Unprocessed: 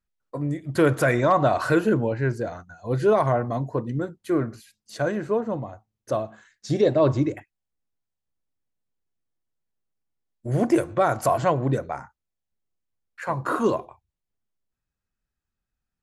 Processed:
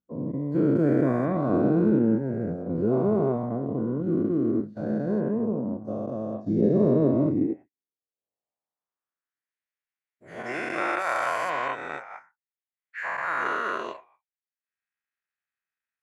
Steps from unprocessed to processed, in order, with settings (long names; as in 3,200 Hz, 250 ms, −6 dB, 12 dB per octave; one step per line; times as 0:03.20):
every bin's largest magnitude spread in time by 480 ms
transient designer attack +2 dB, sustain −10 dB
band-pass filter sweep 220 Hz → 2,000 Hz, 0:07.33–0:09.54